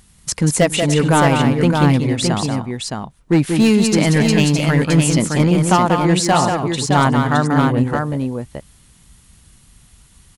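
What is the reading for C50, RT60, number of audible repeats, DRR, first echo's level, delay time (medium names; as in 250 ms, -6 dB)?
no reverb, no reverb, 3, no reverb, -5.5 dB, 186 ms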